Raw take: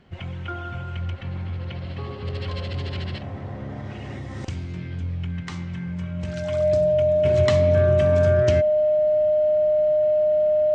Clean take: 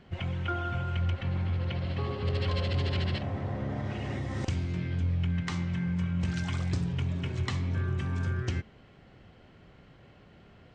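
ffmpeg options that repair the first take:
-af "bandreject=f=610:w=30,asetnsamples=n=441:p=0,asendcmd='7.25 volume volume -8.5dB',volume=1"

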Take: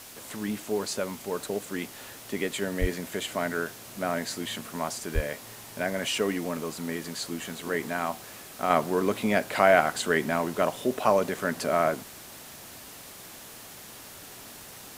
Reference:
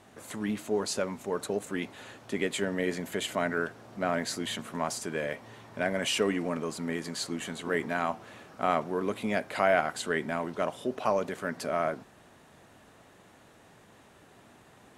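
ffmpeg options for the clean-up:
-filter_complex "[0:a]adeclick=t=4,asplit=3[s0][s1][s2];[s0]afade=t=out:st=2.8:d=0.02[s3];[s1]highpass=f=140:w=0.5412,highpass=f=140:w=1.3066,afade=t=in:st=2.8:d=0.02,afade=t=out:st=2.92:d=0.02[s4];[s2]afade=t=in:st=2.92:d=0.02[s5];[s3][s4][s5]amix=inputs=3:normalize=0,asplit=3[s6][s7][s8];[s6]afade=t=out:st=5.14:d=0.02[s9];[s7]highpass=f=140:w=0.5412,highpass=f=140:w=1.3066,afade=t=in:st=5.14:d=0.02,afade=t=out:st=5.26:d=0.02[s10];[s8]afade=t=in:st=5.26:d=0.02[s11];[s9][s10][s11]amix=inputs=3:normalize=0,afwtdn=0.0056,asetnsamples=n=441:p=0,asendcmd='8.7 volume volume -5dB',volume=1"

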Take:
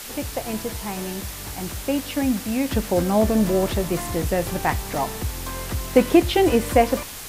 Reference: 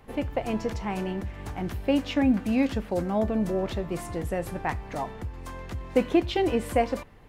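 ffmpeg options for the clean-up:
-af "afwtdn=0.018,asetnsamples=n=441:p=0,asendcmd='2.71 volume volume -7dB',volume=1"

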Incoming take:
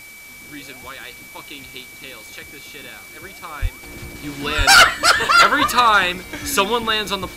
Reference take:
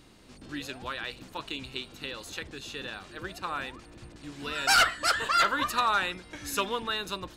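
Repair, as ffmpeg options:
-filter_complex "[0:a]bandreject=f=2300:w=30,asplit=3[s0][s1][s2];[s0]afade=t=out:st=3.61:d=0.02[s3];[s1]highpass=f=140:w=0.5412,highpass=f=140:w=1.3066,afade=t=in:st=3.61:d=0.02,afade=t=out:st=3.73:d=0.02[s4];[s2]afade=t=in:st=3.73:d=0.02[s5];[s3][s4][s5]amix=inputs=3:normalize=0,asplit=3[s6][s7][s8];[s6]afade=t=out:st=4.57:d=0.02[s9];[s7]highpass=f=140:w=0.5412,highpass=f=140:w=1.3066,afade=t=in:st=4.57:d=0.02,afade=t=out:st=4.69:d=0.02[s10];[s8]afade=t=in:st=4.69:d=0.02[s11];[s9][s10][s11]amix=inputs=3:normalize=0,afwtdn=0.0071,asetnsamples=n=441:p=0,asendcmd='3.83 volume volume -12dB',volume=1"

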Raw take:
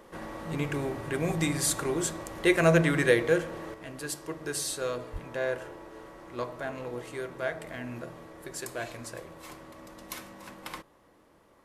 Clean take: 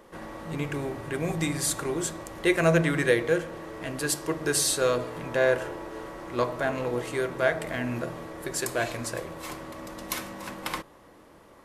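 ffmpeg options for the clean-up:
-filter_complex "[0:a]asplit=3[s0][s1][s2];[s0]afade=t=out:st=5.12:d=0.02[s3];[s1]highpass=f=140:w=0.5412,highpass=f=140:w=1.3066,afade=t=in:st=5.12:d=0.02,afade=t=out:st=5.24:d=0.02[s4];[s2]afade=t=in:st=5.24:d=0.02[s5];[s3][s4][s5]amix=inputs=3:normalize=0,asetnsamples=n=441:p=0,asendcmd='3.74 volume volume 8dB',volume=1"

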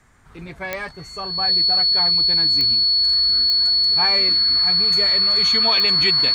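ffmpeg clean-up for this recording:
-af "adeclick=t=4,bandreject=f=4400:w=30"

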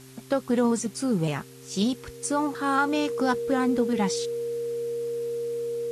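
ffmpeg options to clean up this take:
-af "adeclick=t=4,bandreject=f=130.7:t=h:w=4,bandreject=f=261.4:t=h:w=4,bandreject=f=392.1:t=h:w=4,bandreject=f=470:w=30,afwtdn=0.0028"

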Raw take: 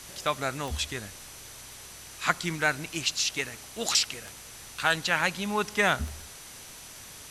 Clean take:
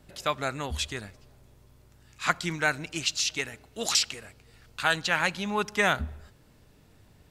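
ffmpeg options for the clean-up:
-af "adeclick=t=4,bandreject=f=6000:w=30,afwtdn=0.0063"

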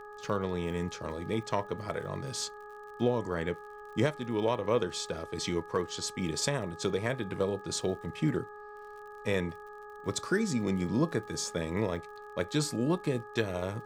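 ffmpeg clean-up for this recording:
-af "adeclick=t=4,bandreject=f=417.8:t=h:w=4,bandreject=f=835.6:t=h:w=4,bandreject=f=1253.4:t=h:w=4,bandreject=f=1671.2:t=h:w=4,bandreject=f=1200:w=30,agate=range=0.0891:threshold=0.0112"

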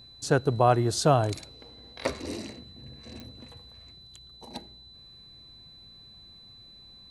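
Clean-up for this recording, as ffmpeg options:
-af "adeclick=t=4,bandreject=f=4000:w=30"

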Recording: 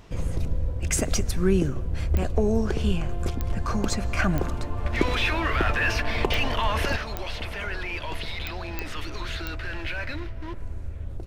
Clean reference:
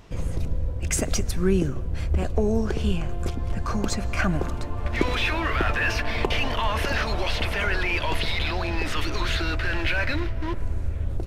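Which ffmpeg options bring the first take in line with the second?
-af "adeclick=t=4,asetnsamples=n=441:p=0,asendcmd='6.96 volume volume 7dB',volume=1"

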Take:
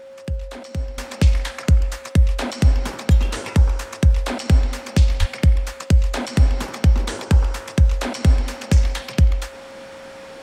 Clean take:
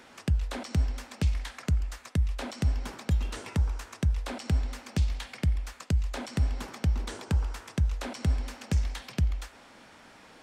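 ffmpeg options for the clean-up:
-filter_complex "[0:a]adeclick=t=4,bandreject=f=540:w=30,asplit=3[s0][s1][s2];[s0]afade=t=out:st=5.19:d=0.02[s3];[s1]highpass=f=140:w=0.5412,highpass=f=140:w=1.3066,afade=t=in:st=5.19:d=0.02,afade=t=out:st=5.31:d=0.02[s4];[s2]afade=t=in:st=5.31:d=0.02[s5];[s3][s4][s5]amix=inputs=3:normalize=0,asetnsamples=n=441:p=0,asendcmd='0.98 volume volume -11.5dB',volume=1"

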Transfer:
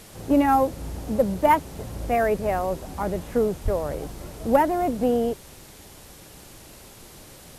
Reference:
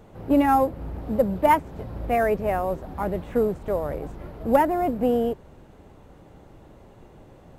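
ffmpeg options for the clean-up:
-filter_complex "[0:a]asplit=3[s0][s1][s2];[s0]afade=t=out:st=3.64:d=0.02[s3];[s1]highpass=f=140:w=0.5412,highpass=f=140:w=1.3066,afade=t=in:st=3.64:d=0.02,afade=t=out:st=3.76:d=0.02[s4];[s2]afade=t=in:st=3.76:d=0.02[s5];[s3][s4][s5]amix=inputs=3:normalize=0,afwtdn=0.0045"

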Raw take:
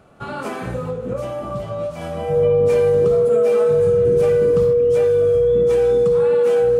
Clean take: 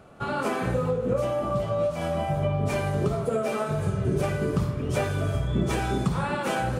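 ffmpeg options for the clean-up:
-af "bandreject=f=480:w=30,asetnsamples=n=441:p=0,asendcmd='4.73 volume volume 4dB',volume=1"

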